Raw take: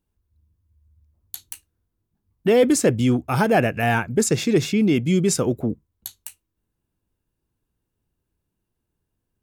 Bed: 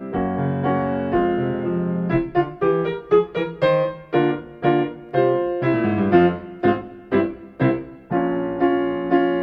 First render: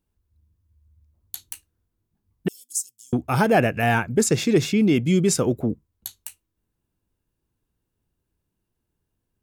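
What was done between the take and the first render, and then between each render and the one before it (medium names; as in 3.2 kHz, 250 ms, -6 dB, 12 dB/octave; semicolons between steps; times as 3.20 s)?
2.48–3.13 s: inverse Chebyshev high-pass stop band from 2 kHz, stop band 60 dB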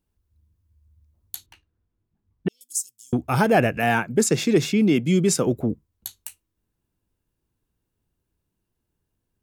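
1.46–2.61 s: distance through air 260 m; 3.77–5.47 s: high-pass 130 Hz 24 dB/octave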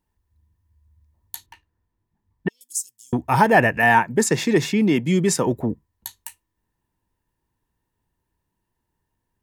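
small resonant body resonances 940/1800 Hz, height 14 dB, ringing for 25 ms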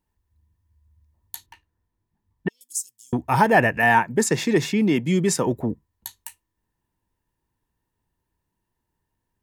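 trim -1.5 dB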